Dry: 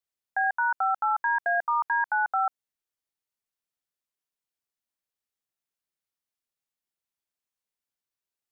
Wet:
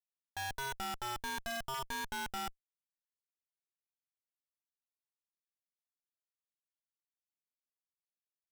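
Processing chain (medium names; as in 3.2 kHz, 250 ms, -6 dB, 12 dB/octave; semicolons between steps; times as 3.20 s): Schmitt trigger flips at -47 dBFS; vibrato 0.52 Hz 26 cents; trim -6.5 dB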